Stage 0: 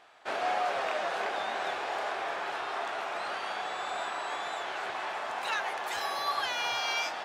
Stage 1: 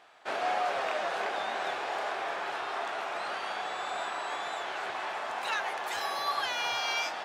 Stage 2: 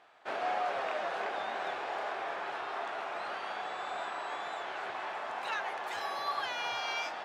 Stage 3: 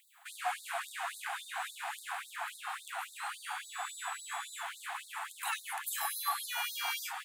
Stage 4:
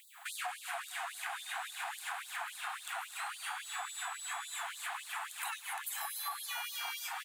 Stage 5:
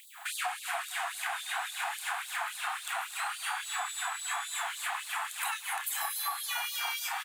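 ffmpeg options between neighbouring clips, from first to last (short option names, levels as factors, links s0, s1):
-af "highpass=71"
-af "highshelf=f=4500:g=-9,volume=0.75"
-af "aexciter=amount=15.5:drive=4.3:freq=7900,afftfilt=real='re*gte(b*sr/1024,650*pow(3700/650,0.5+0.5*sin(2*PI*3.6*pts/sr)))':imag='im*gte(b*sr/1024,650*pow(3700/650,0.5+0.5*sin(2*PI*3.6*pts/sr)))':win_size=1024:overlap=0.75,volume=1.19"
-filter_complex "[0:a]acompressor=threshold=0.00562:ratio=6,asplit=2[s0][s1];[s1]aecho=0:1:230|460|690:0.251|0.0653|0.017[s2];[s0][s2]amix=inputs=2:normalize=0,volume=2.24"
-filter_complex "[0:a]asplit=2[s0][s1];[s1]adelay=31,volume=0.316[s2];[s0][s2]amix=inputs=2:normalize=0,volume=1.88"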